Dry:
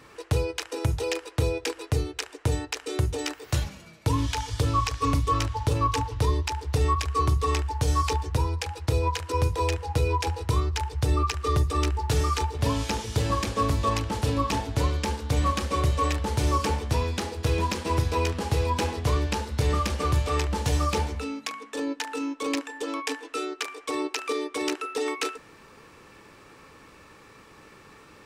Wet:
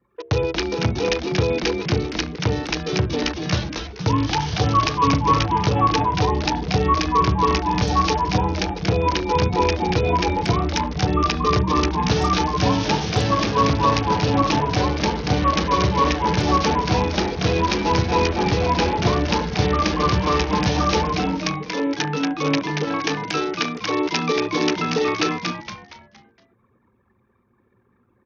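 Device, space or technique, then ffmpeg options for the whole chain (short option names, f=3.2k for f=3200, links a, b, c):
Bluetooth headset: -filter_complex "[0:a]anlmdn=0.631,lowshelf=f=130:g=2.5,bandreject=f=67.11:t=h:w=4,bandreject=f=134.22:t=h:w=4,bandreject=f=201.33:t=h:w=4,bandreject=f=268.44:t=h:w=4,bandreject=f=335.55:t=h:w=4,bandreject=f=402.66:t=h:w=4,bandreject=f=469.77:t=h:w=4,bandreject=f=536.88:t=h:w=4,bandreject=f=603.99:t=h:w=4,bandreject=f=671.1:t=h:w=4,asplit=6[a][b][c][d][e][f];[b]adelay=233,afreqshift=-130,volume=-4dB[g];[c]adelay=466,afreqshift=-260,volume=-11.7dB[h];[d]adelay=699,afreqshift=-390,volume=-19.5dB[i];[e]adelay=932,afreqshift=-520,volume=-27.2dB[j];[f]adelay=1165,afreqshift=-650,volume=-35dB[k];[a][g][h][i][j][k]amix=inputs=6:normalize=0,highpass=120,aresample=16000,aresample=44100,volume=7dB" -ar 48000 -c:a sbc -b:a 64k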